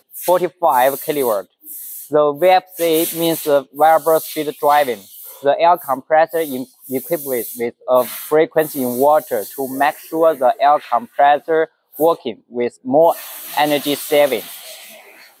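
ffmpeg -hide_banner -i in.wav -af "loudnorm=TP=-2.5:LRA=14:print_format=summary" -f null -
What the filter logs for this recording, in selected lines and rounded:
Input Integrated:    -16.8 LUFS
Input True Peak:      -2.1 dBTP
Input LRA:             2.2 LU
Input Threshold:     -27.3 LUFS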